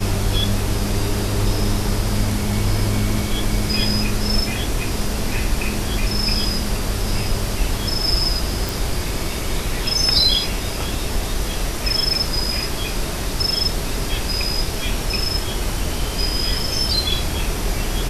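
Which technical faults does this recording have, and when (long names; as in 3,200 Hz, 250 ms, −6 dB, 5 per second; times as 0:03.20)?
0:08.69: click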